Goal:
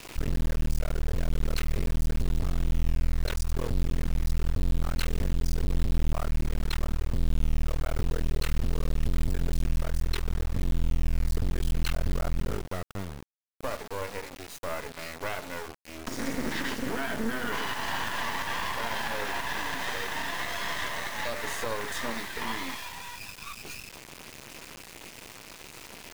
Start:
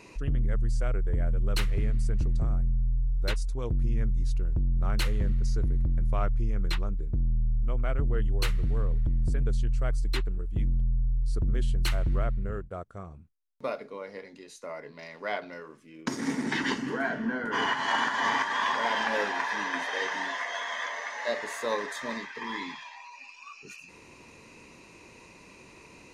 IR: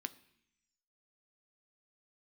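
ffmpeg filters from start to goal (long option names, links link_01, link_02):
-af "alimiter=level_in=3dB:limit=-24dB:level=0:latency=1:release=185,volume=-3dB,acrusher=bits=5:dc=4:mix=0:aa=0.000001,volume=8.5dB"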